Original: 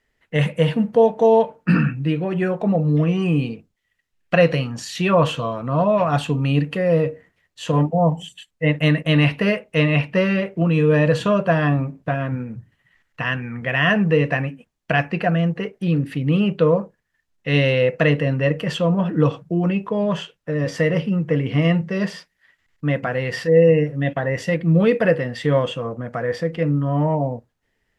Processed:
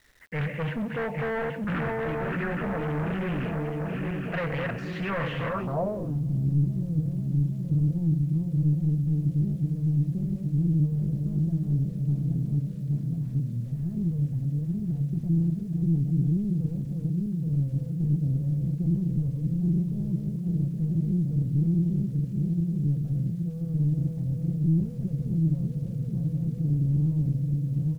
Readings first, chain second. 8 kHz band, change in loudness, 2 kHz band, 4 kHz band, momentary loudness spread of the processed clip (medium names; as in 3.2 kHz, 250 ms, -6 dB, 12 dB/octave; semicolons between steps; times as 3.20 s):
no reading, -7.5 dB, under -10 dB, under -15 dB, 6 LU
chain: backward echo that repeats 411 ms, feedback 76%, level -5.5 dB; treble shelf 3.1 kHz +9.5 dB; delay 127 ms -21.5 dB; hard clipper -19.5 dBFS, distortion -6 dB; peak limiter -29.5 dBFS, peak gain reduction 10 dB; bass shelf 130 Hz +8.5 dB; low-pass sweep 1.8 kHz -> 160 Hz, 5.46–6.27 s; word length cut 10-bit, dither none; loudspeaker Doppler distortion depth 0.39 ms